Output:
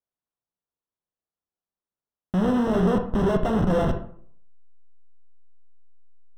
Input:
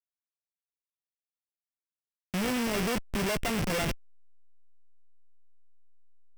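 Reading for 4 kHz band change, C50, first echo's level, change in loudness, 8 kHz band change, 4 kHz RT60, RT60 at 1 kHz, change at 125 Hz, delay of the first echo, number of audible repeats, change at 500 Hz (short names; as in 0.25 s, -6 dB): -7.0 dB, 9.0 dB, none, +7.0 dB, under -10 dB, 0.35 s, 0.55 s, +9.5 dB, none, none, +9.0 dB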